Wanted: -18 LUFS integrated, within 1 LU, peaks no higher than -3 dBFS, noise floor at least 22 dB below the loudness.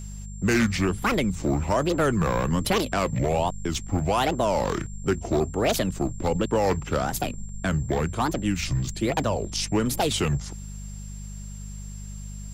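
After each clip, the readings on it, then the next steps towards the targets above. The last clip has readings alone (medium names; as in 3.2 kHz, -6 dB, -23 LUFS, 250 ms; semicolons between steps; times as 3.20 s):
hum 50 Hz; highest harmonic 200 Hz; hum level -34 dBFS; steady tone 7.4 kHz; tone level -46 dBFS; loudness -25.5 LUFS; peak level -13.0 dBFS; loudness target -18.0 LUFS
-> de-hum 50 Hz, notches 4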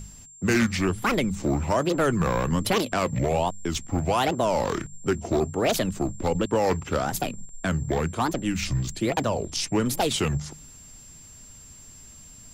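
hum not found; steady tone 7.4 kHz; tone level -46 dBFS
-> band-stop 7.4 kHz, Q 30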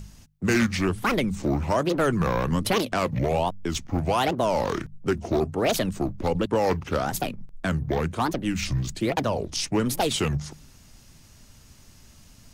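steady tone not found; loudness -25.5 LUFS; peak level -13.0 dBFS; loudness target -18.0 LUFS
-> trim +7.5 dB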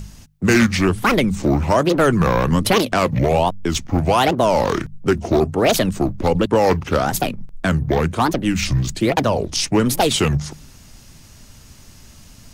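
loudness -18.0 LUFS; peak level -5.5 dBFS; noise floor -44 dBFS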